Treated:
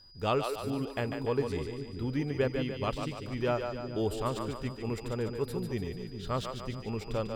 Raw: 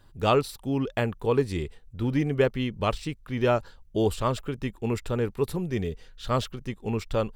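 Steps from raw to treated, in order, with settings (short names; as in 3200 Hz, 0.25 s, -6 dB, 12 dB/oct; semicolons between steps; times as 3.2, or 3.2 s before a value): split-band echo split 340 Hz, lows 0.405 s, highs 0.146 s, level -6 dB; whine 4900 Hz -48 dBFS; gain -7 dB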